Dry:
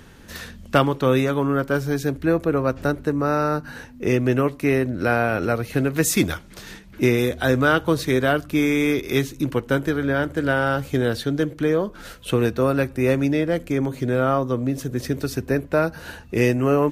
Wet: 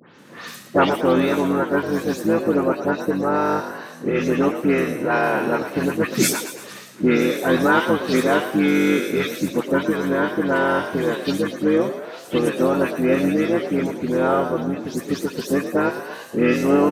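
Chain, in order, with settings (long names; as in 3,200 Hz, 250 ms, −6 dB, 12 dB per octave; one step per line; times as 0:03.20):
every frequency bin delayed by itself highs late, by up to 188 ms
Bessel high-pass filter 300 Hz, order 4
low-shelf EQ 400 Hz +4 dB
pitch-shifted copies added −7 semitones −4 dB, +3 semitones −15 dB
on a send: echo with shifted repeats 113 ms, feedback 53%, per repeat +48 Hz, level −10.5 dB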